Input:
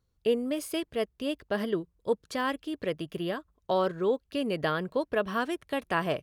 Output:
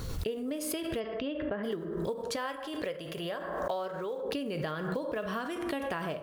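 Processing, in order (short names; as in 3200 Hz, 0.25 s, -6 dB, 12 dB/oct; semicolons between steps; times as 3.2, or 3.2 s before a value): block floating point 7-bit; plate-style reverb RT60 0.69 s, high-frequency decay 0.55×, DRR 8.5 dB; compressor, threshold -32 dBFS, peak gain reduction 12 dB; 0.99–1.63 LPF 5600 Hz -> 2100 Hz 24 dB/oct; 2.36–4.25 resonant low shelf 420 Hz -6.5 dB, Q 1.5; backwards sustainer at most 30 dB/s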